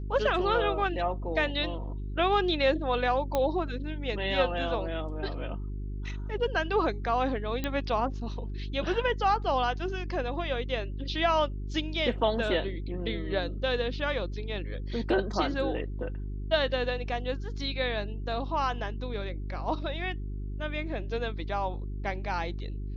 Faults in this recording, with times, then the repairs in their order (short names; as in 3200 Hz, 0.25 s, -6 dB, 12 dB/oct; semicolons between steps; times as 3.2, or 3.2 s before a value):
hum 50 Hz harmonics 8 -35 dBFS
3.35 pop -14 dBFS
7.64 pop -16 dBFS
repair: de-click; de-hum 50 Hz, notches 8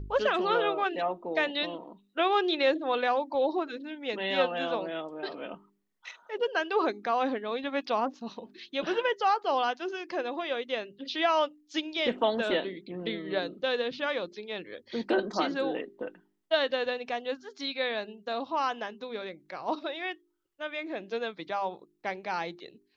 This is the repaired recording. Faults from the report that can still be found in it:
none